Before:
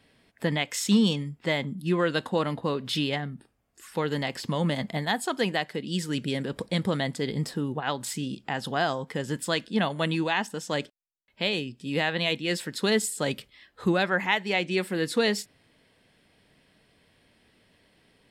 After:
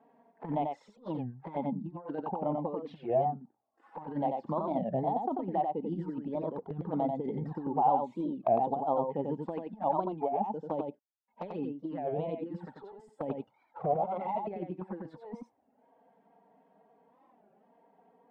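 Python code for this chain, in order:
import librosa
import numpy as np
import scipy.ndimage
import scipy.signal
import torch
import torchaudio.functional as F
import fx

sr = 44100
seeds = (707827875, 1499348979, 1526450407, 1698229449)

y = fx.lower_of_two(x, sr, delay_ms=1.4, at=(13.32, 14.47))
y = scipy.signal.sosfilt(scipy.signal.butter(2, 220.0, 'highpass', fs=sr, output='sos'), y)
y = fx.dereverb_blind(y, sr, rt60_s=0.68)
y = fx.hpss(y, sr, part='percussive', gain_db=-9)
y = fx.over_compress(y, sr, threshold_db=-35.0, ratio=-0.5)
y = fx.lowpass_res(y, sr, hz=830.0, q=6.1)
y = fx.env_flanger(y, sr, rest_ms=4.7, full_db=-29.5)
y = y + 10.0 ** (-4.0 / 20.0) * np.pad(y, (int(91 * sr / 1000.0), 0))[:len(y)]
y = fx.record_warp(y, sr, rpm=33.33, depth_cents=250.0)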